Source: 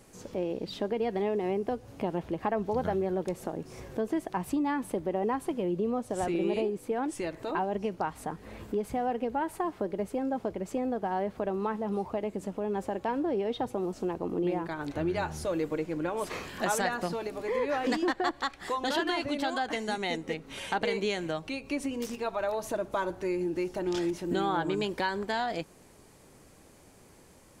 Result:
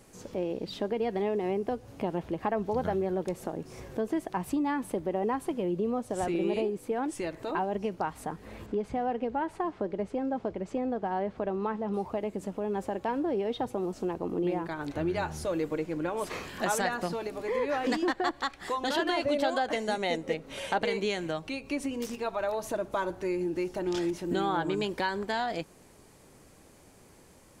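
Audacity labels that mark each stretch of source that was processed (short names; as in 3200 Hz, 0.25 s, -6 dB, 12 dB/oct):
8.660000	11.940000	air absorption 83 m
18.990000	20.790000	bell 570 Hz +9.5 dB 0.42 oct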